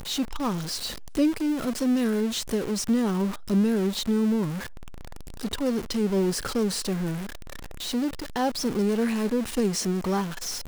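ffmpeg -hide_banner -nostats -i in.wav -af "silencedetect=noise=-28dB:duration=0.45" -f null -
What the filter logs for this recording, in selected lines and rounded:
silence_start: 4.58
silence_end: 5.41 | silence_duration: 0.83
silence_start: 7.18
silence_end: 7.85 | silence_duration: 0.67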